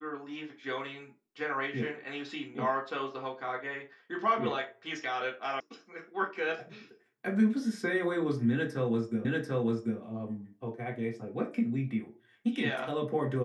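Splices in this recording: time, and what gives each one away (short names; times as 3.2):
5.6 sound cut off
9.25 repeat of the last 0.74 s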